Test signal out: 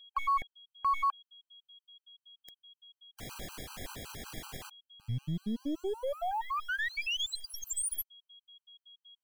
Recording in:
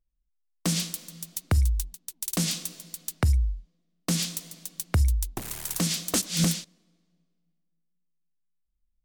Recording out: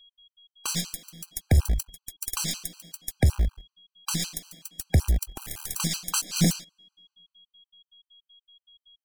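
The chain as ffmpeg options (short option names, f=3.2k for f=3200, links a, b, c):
-filter_complex "[0:a]aeval=exprs='0.2*(cos(1*acos(clip(val(0)/0.2,-1,1)))-cos(1*PI/2))+0.0316*(cos(2*acos(clip(val(0)/0.2,-1,1)))-cos(2*PI/2))+0.00398*(cos(3*acos(clip(val(0)/0.2,-1,1)))-cos(3*PI/2))+0.002*(cos(6*acos(clip(val(0)/0.2,-1,1)))-cos(6*PI/2))+0.00398*(cos(7*acos(clip(val(0)/0.2,-1,1)))-cos(7*PI/2))':c=same,asplit=2[a][b];[b]acrusher=bits=5:dc=4:mix=0:aa=0.000001,volume=-4dB[c];[a][c]amix=inputs=2:normalize=0,aeval=exprs='val(0)+0.00282*sin(2*PI*3300*n/s)':c=same,afftfilt=real='re*gt(sin(2*PI*5.3*pts/sr)*(1-2*mod(floor(b*sr/1024/800),2)),0)':imag='im*gt(sin(2*PI*5.3*pts/sr)*(1-2*mod(floor(b*sr/1024/800),2)),0)':win_size=1024:overlap=0.75,volume=-1dB"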